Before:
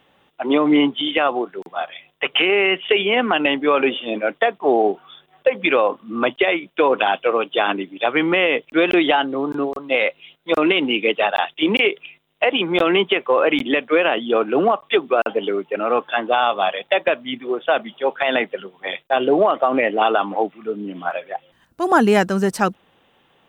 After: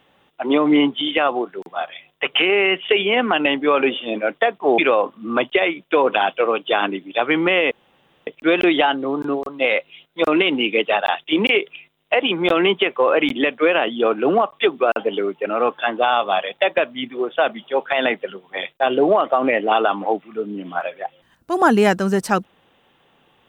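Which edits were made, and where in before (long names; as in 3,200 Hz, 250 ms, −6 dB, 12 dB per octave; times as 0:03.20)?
0:04.78–0:05.64: remove
0:08.57: splice in room tone 0.56 s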